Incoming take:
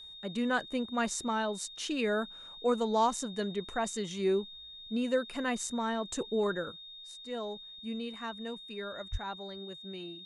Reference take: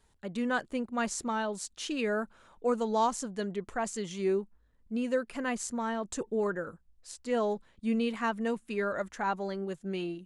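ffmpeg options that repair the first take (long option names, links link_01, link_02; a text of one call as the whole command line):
ffmpeg -i in.wav -filter_complex "[0:a]bandreject=frequency=3700:width=30,asplit=3[link_01][link_02][link_03];[link_01]afade=type=out:start_time=9.11:duration=0.02[link_04];[link_02]highpass=frequency=140:width=0.5412,highpass=frequency=140:width=1.3066,afade=type=in:start_time=9.11:duration=0.02,afade=type=out:start_time=9.23:duration=0.02[link_05];[link_03]afade=type=in:start_time=9.23:duration=0.02[link_06];[link_04][link_05][link_06]amix=inputs=3:normalize=0,asetnsamples=nb_out_samples=441:pad=0,asendcmd='6.72 volume volume 9dB',volume=0dB" out.wav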